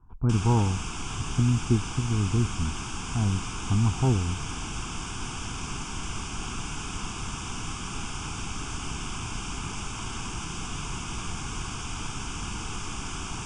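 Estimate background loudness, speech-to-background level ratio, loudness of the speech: −34.5 LKFS, 7.5 dB, −27.0 LKFS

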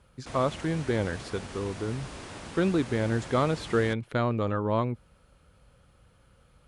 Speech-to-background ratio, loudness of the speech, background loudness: 13.0 dB, −29.0 LKFS, −42.0 LKFS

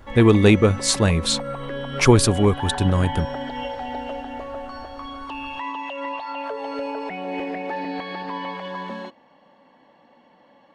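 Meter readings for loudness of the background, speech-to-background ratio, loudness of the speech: −30.5 LKFS, 12.0 dB, −18.5 LKFS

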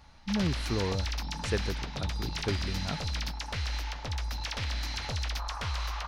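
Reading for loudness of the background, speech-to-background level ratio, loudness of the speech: −34.5 LKFS, −1.0 dB, −35.5 LKFS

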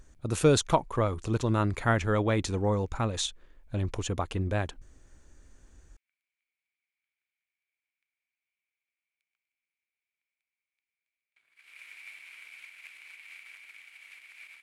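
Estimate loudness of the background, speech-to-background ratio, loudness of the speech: −47.5 LKFS, 19.0 dB, −28.5 LKFS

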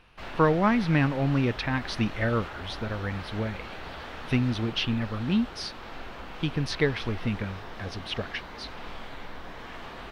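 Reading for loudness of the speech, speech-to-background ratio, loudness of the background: −28.5 LKFS, 12.5 dB, −41.0 LKFS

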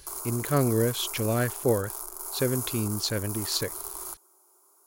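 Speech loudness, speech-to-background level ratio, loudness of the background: −28.5 LKFS, 5.5 dB, −34.0 LKFS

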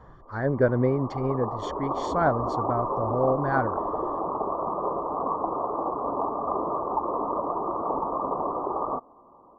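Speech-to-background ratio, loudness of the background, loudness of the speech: 2.5 dB, −29.5 LKFS, −27.0 LKFS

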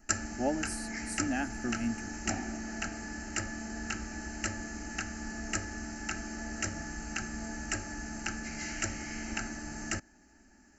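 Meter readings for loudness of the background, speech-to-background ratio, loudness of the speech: −37.5 LKFS, 1.5 dB, −36.0 LKFS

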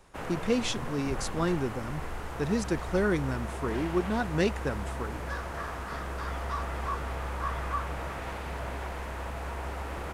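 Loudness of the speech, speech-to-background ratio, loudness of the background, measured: −31.5 LKFS, 5.0 dB, −36.5 LKFS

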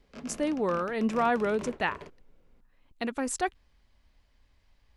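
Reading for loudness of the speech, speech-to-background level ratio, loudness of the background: −30.0 LKFS, 15.0 dB, −45.0 LKFS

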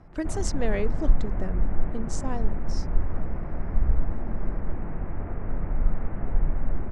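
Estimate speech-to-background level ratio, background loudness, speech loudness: −2.5 dB, −32.0 LKFS, −34.5 LKFS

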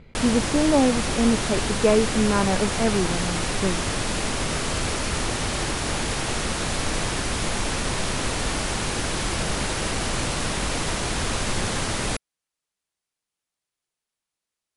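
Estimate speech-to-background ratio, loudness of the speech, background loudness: 2.0 dB, −23.5 LKFS, −25.5 LKFS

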